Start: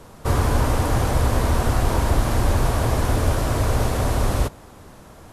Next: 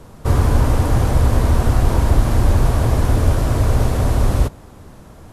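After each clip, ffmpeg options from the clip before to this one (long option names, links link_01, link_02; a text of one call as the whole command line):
ffmpeg -i in.wav -af "lowshelf=frequency=340:gain=7,volume=-1dB" out.wav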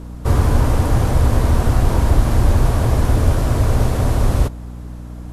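ffmpeg -i in.wav -af "aeval=exprs='val(0)+0.0316*(sin(2*PI*60*n/s)+sin(2*PI*2*60*n/s)/2+sin(2*PI*3*60*n/s)/3+sin(2*PI*4*60*n/s)/4+sin(2*PI*5*60*n/s)/5)':channel_layout=same" out.wav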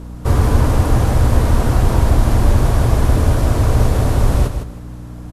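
ffmpeg -i in.wav -af "aecho=1:1:157|314|471:0.376|0.0827|0.0182,volume=1dB" out.wav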